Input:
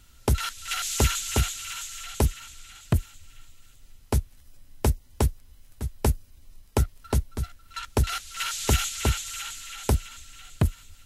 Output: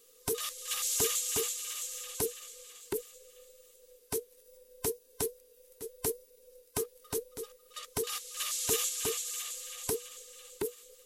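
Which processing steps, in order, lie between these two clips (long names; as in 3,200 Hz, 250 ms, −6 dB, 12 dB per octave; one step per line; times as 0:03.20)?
frequency inversion band by band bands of 500 Hz
first-order pre-emphasis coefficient 0.8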